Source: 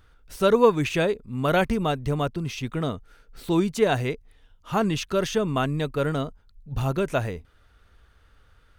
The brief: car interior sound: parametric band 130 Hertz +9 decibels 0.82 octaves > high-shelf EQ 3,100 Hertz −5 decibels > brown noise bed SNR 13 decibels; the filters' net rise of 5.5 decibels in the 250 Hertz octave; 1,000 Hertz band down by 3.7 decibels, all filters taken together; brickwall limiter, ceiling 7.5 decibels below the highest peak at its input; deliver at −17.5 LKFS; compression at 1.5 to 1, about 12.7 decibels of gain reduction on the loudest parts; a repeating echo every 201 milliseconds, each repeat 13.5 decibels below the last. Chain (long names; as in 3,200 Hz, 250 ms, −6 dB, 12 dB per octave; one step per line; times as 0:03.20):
parametric band 250 Hz +4.5 dB
parametric band 1,000 Hz −5 dB
downward compressor 1.5 to 1, threshold −49 dBFS
brickwall limiter −25.5 dBFS
parametric band 130 Hz +9 dB 0.82 octaves
high-shelf EQ 3,100 Hz −5 dB
repeating echo 201 ms, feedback 21%, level −13.5 dB
brown noise bed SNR 13 dB
level +16 dB